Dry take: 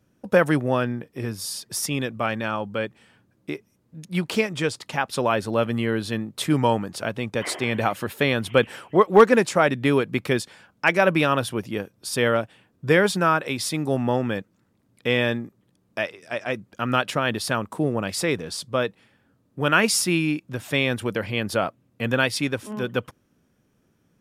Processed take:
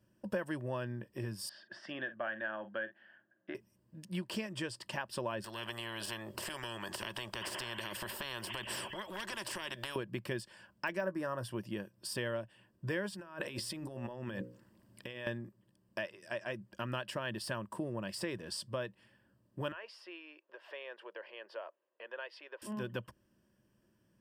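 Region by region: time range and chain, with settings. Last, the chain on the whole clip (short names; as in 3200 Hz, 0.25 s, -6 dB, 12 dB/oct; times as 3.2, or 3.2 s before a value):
1.49–3.55 speaker cabinet 360–3000 Hz, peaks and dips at 450 Hz -9 dB, 700 Hz +6 dB, 990 Hz -9 dB, 1600 Hz +10 dB, 2500 Hz -9 dB + doubler 46 ms -13.5 dB
5.44–9.96 compressor 3:1, threshold -34 dBFS + small resonant body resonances 390/3300 Hz, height 17 dB, ringing for 40 ms + spectral compressor 10:1
11.01–11.44 band shelf 3000 Hz -15.5 dB 1 oct + doubler 16 ms -11.5 dB
13.09–15.27 notches 60/120/180/240/300/360/420/480/540 Hz + negative-ratio compressor -34 dBFS
19.72–22.62 compressor 2:1, threshold -37 dBFS + Chebyshev high-pass 430 Hz, order 4 + air absorption 300 m
whole clip: de-esser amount 55%; ripple EQ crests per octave 1.3, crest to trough 9 dB; compressor 3:1, threshold -29 dBFS; gain -8 dB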